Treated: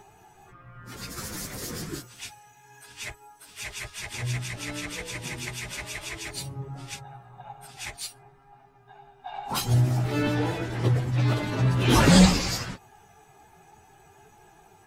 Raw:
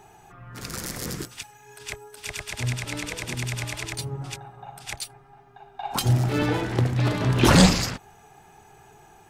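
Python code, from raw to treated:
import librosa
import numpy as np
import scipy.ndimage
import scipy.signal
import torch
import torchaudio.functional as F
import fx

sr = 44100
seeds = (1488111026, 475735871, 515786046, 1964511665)

y = fx.stretch_vocoder_free(x, sr, factor=1.6)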